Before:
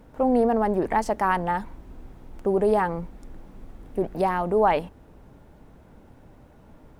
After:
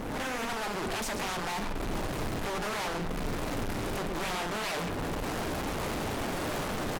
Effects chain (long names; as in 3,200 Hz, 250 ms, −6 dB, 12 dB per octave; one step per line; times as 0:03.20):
camcorder AGC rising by 48 dB per second
high-shelf EQ 8,900 Hz +7 dB
single-tap delay 111 ms −21 dB
in parallel at −0.5 dB: brickwall limiter −17.5 dBFS, peak gain reduction 10.5 dB
on the sum: sine wavefolder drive 15 dB, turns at −4.5 dBFS
low-shelf EQ 150 Hz −6 dB
tube saturation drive 30 dB, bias 0.8
on a send at −8 dB: convolution reverb RT60 2.1 s, pre-delay 3 ms
on the sum: downsampling to 32,000 Hz
highs frequency-modulated by the lows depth 0.75 ms
level −3 dB